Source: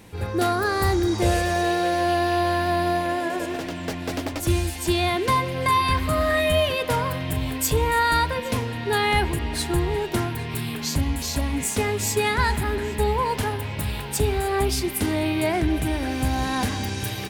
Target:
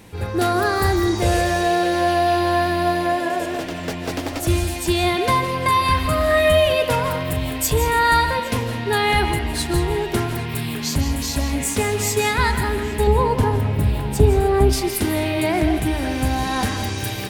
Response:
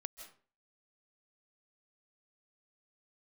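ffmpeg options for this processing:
-filter_complex "[0:a]asettb=1/sr,asplit=3[s0][s1][s2];[s0]atrim=end=13.074[s3];[s1]atrim=start=13.07:end=14.73,asetpts=PTS-STARTPTS,afade=t=in:d=0.004:c=qsin,afade=t=out:st=1.656:d=0.004:c=qsin,tiltshelf=f=970:g=7[s4];[s2]atrim=start=14.726[s5];[s3][s4]acrossfade=d=0.004:c1=hsin:c2=qsin[s6];[s6][s5]acrossfade=d=0.004:c1=qsin:c2=hsin[s7];[1:a]atrim=start_sample=2205[s8];[s7][s8]afir=irnorm=-1:irlink=0,volume=2.11"

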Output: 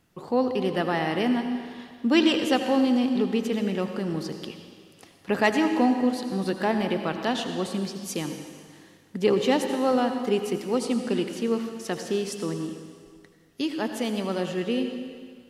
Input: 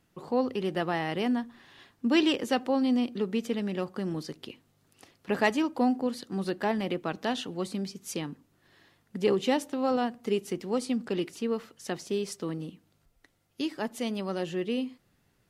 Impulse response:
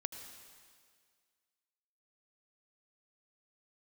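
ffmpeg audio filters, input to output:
-filter_complex "[1:a]atrim=start_sample=2205[s0];[0:a][s0]afir=irnorm=-1:irlink=0,volume=1.88"

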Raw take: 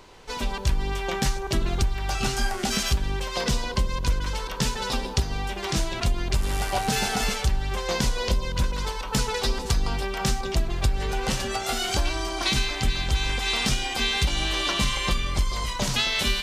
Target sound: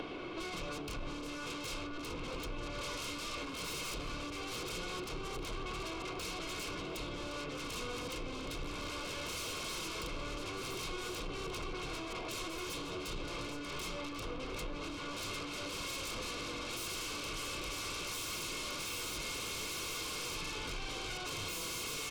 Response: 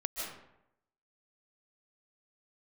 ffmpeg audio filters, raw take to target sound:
-filter_complex "[0:a]acrossover=split=190 4700:gain=0.158 1 0.126[s0][s1][s2];[s0][s1][s2]amix=inputs=3:normalize=0,asoftclip=type=tanh:threshold=0.0473,asplit=6[s3][s4][s5][s6][s7][s8];[s4]adelay=262,afreqshift=120,volume=0.251[s9];[s5]adelay=524,afreqshift=240,volume=0.116[s10];[s6]adelay=786,afreqshift=360,volume=0.0531[s11];[s7]adelay=1048,afreqshift=480,volume=0.0245[s12];[s8]adelay=1310,afreqshift=600,volume=0.0112[s13];[s3][s9][s10][s11][s12][s13]amix=inputs=6:normalize=0,asetrate=32766,aresample=44100,aeval=exprs='0.0531*sin(PI/2*2.82*val(0)/0.0531)':c=same,superequalizer=6b=1.78:8b=0.501:9b=0.562:11b=0.282,acompressor=threshold=0.00794:ratio=12,aecho=1:1:1.9:0.4,volume=1.41"

